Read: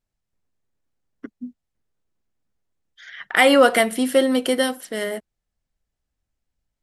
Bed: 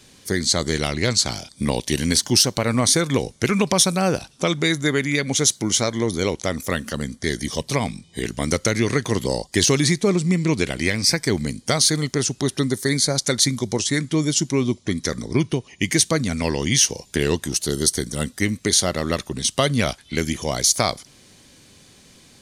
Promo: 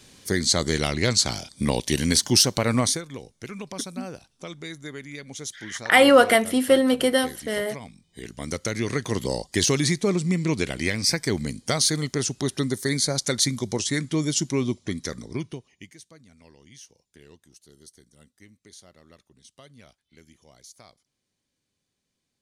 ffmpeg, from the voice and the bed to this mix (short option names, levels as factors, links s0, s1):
-filter_complex "[0:a]adelay=2550,volume=0.944[s0];[1:a]volume=3.76,afade=t=out:st=2.78:d=0.24:silence=0.16788,afade=t=in:st=7.98:d=1.26:silence=0.223872,afade=t=out:st=14.64:d=1.3:silence=0.0473151[s1];[s0][s1]amix=inputs=2:normalize=0"